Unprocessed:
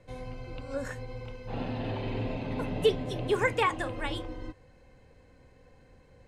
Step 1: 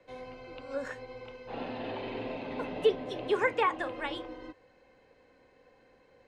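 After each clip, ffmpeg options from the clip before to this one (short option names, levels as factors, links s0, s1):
-filter_complex "[0:a]acrossover=split=250 5500:gain=0.141 1 0.224[s0][s1][s2];[s0][s1][s2]amix=inputs=3:normalize=0,acrossover=split=610|2100[s3][s4][s5];[s5]alimiter=level_in=2.51:limit=0.0631:level=0:latency=1:release=311,volume=0.398[s6];[s3][s4][s6]amix=inputs=3:normalize=0"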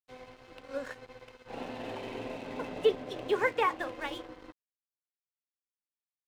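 -af "aeval=exprs='sgn(val(0))*max(abs(val(0))-0.00398,0)':c=same"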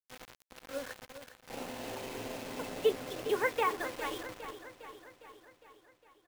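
-af "acrusher=bits=6:mix=0:aa=0.000001,aecho=1:1:407|814|1221|1628|2035|2442|2849:0.251|0.148|0.0874|0.0516|0.0304|0.018|0.0106,volume=0.75"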